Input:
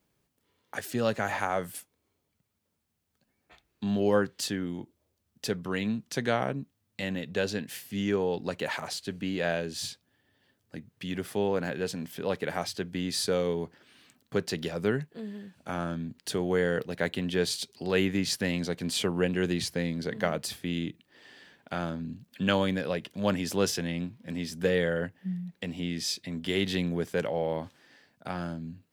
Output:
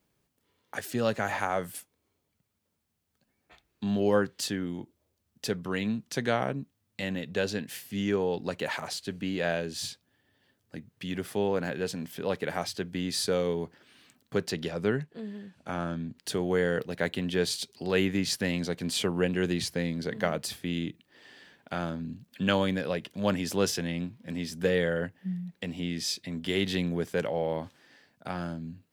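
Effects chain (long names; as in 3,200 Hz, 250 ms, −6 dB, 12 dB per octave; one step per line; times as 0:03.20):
0:14.51–0:16.17: high-shelf EQ 11,000 Hz −11.5 dB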